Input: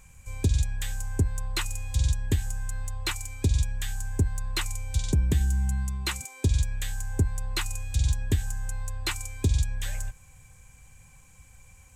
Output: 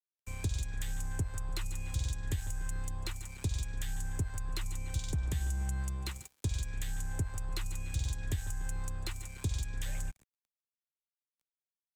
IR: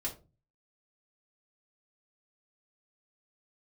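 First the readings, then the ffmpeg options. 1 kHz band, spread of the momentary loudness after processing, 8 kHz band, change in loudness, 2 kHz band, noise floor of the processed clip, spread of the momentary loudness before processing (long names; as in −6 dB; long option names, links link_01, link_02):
−7.0 dB, 5 LU, −7.5 dB, −8.5 dB, −9.0 dB, below −85 dBFS, 8 LU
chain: -filter_complex "[0:a]asplit=2[link_01][link_02];[link_02]adelay=146,lowpass=frequency=4400:poles=1,volume=-17dB,asplit=2[link_03][link_04];[link_04]adelay=146,lowpass=frequency=4400:poles=1,volume=0.43,asplit=2[link_05][link_06];[link_06]adelay=146,lowpass=frequency=4400:poles=1,volume=0.43,asplit=2[link_07][link_08];[link_08]adelay=146,lowpass=frequency=4400:poles=1,volume=0.43[link_09];[link_01][link_03][link_05][link_07][link_09]amix=inputs=5:normalize=0,aeval=exprs='sgn(val(0))*max(abs(val(0))-0.00944,0)':channel_layout=same,acrossover=split=150|550[link_10][link_11][link_12];[link_10]acompressor=threshold=-32dB:ratio=4[link_13];[link_11]acompressor=threshold=-50dB:ratio=4[link_14];[link_12]acompressor=threshold=-43dB:ratio=4[link_15];[link_13][link_14][link_15]amix=inputs=3:normalize=0"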